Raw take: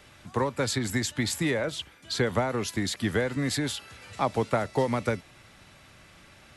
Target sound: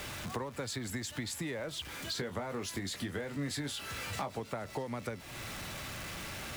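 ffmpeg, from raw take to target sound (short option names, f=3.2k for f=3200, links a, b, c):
-filter_complex "[0:a]aeval=exprs='val(0)+0.5*0.0119*sgn(val(0))':c=same,acompressor=threshold=-36dB:ratio=6,asettb=1/sr,asplit=3[a][b][c];[a]atrim=end=2.144[d];[b]atrim=start=2.14:end=4.4,asetpts=PTS-STARTPTS,afade=t=in:d=0.004:c=qsin,afade=t=out:st=2.256:d=0.004:c=qsin,asplit=2[e][f];[f]adelay=21,volume=-8dB[g];[e][g]amix=inputs=2:normalize=0,atrim=end_sample=99666[h];[c]atrim=start=4.396[i];[d][h]acrossfade=d=0.004:c1=hsin:c2=qsin[j];[j][i]acrossfade=d=0.004:c1=qsin:c2=hsin"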